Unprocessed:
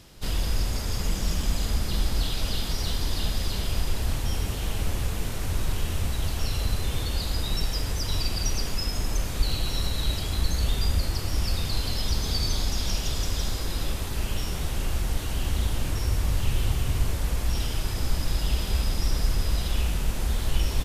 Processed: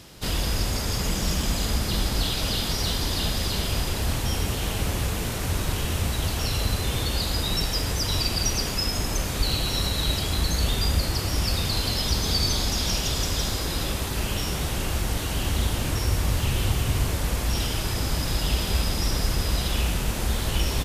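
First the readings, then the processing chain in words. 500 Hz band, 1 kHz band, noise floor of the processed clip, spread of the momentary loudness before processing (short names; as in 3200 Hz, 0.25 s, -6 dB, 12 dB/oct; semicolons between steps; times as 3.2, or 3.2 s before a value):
+5.5 dB, +5.5 dB, -29 dBFS, 3 LU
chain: HPF 81 Hz 6 dB/oct; gain +5.5 dB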